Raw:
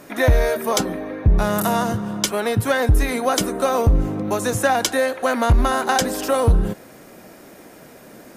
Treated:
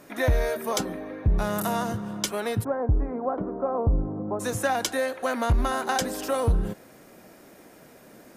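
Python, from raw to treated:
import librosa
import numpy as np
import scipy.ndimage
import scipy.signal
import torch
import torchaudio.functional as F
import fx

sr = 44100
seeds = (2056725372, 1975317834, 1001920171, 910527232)

y = fx.lowpass(x, sr, hz=1100.0, slope=24, at=(2.63, 4.39), fade=0.02)
y = y * librosa.db_to_amplitude(-7.0)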